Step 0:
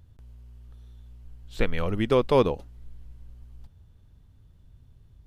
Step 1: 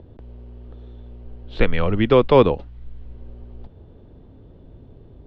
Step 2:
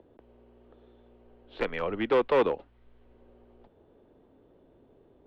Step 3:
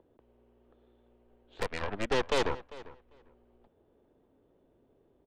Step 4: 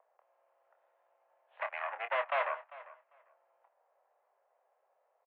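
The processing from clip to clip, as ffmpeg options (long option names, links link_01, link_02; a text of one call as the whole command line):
ffmpeg -i in.wav -filter_complex "[0:a]lowpass=frequency=3900:width=0.5412,lowpass=frequency=3900:width=1.3066,acrossover=split=290|590[link_01][link_02][link_03];[link_02]acompressor=mode=upward:threshold=-41dB:ratio=2.5[link_04];[link_01][link_04][link_03]amix=inputs=3:normalize=0,volume=7dB" out.wav
ffmpeg -i in.wav -filter_complex "[0:a]asoftclip=type=hard:threshold=-11dB,acrossover=split=260 3500:gain=0.126 1 0.2[link_01][link_02][link_03];[link_01][link_02][link_03]amix=inputs=3:normalize=0,volume=-6dB" out.wav
ffmpeg -i in.wav -filter_complex "[0:a]aeval=exprs='0.251*(cos(1*acos(clip(val(0)/0.251,-1,1)))-cos(1*PI/2))+0.0794*(cos(6*acos(clip(val(0)/0.251,-1,1)))-cos(6*PI/2))+0.126*(cos(8*acos(clip(val(0)/0.251,-1,1)))-cos(8*PI/2))':channel_layout=same,asplit=2[link_01][link_02];[link_02]adelay=397,lowpass=frequency=3500:poles=1,volume=-18dB,asplit=2[link_03][link_04];[link_04]adelay=397,lowpass=frequency=3500:poles=1,volume=0.16[link_05];[link_01][link_03][link_05]amix=inputs=3:normalize=0,volume=-7.5dB" out.wav
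ffmpeg -i in.wav -filter_complex "[0:a]asplit=2[link_01][link_02];[link_02]adelay=26,volume=-8.5dB[link_03];[link_01][link_03]amix=inputs=2:normalize=0,highpass=frequency=550:width_type=q:width=0.5412,highpass=frequency=550:width_type=q:width=1.307,lowpass=frequency=2400:width_type=q:width=0.5176,lowpass=frequency=2400:width_type=q:width=0.7071,lowpass=frequency=2400:width_type=q:width=1.932,afreqshift=130" out.wav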